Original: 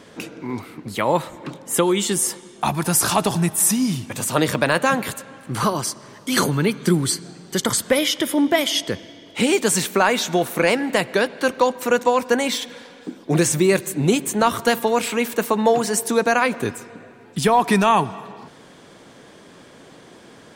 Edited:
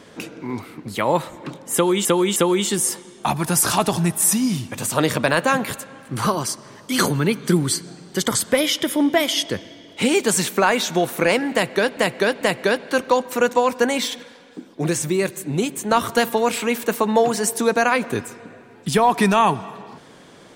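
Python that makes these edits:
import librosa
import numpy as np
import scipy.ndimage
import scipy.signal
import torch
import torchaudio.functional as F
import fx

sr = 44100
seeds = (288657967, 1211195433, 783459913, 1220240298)

y = fx.edit(x, sr, fx.repeat(start_s=1.74, length_s=0.31, count=3),
    fx.repeat(start_s=10.91, length_s=0.44, count=3),
    fx.clip_gain(start_s=12.73, length_s=1.68, db=-4.0), tone=tone)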